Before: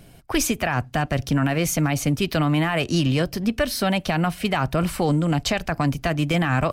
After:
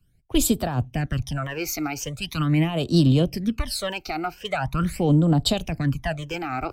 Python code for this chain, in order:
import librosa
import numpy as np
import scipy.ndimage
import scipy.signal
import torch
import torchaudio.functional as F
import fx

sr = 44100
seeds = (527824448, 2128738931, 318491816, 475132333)

y = fx.phaser_stages(x, sr, stages=12, low_hz=170.0, high_hz=2200.0, hz=0.42, feedback_pct=40)
y = fx.band_widen(y, sr, depth_pct=70)